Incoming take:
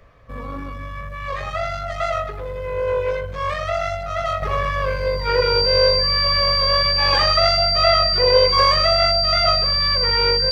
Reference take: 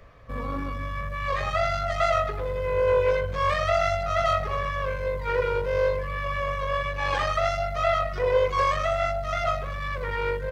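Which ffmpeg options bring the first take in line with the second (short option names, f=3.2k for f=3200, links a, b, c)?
-af "bandreject=f=4.7k:w=30,asetnsamples=n=441:p=0,asendcmd='4.42 volume volume -6.5dB',volume=0dB"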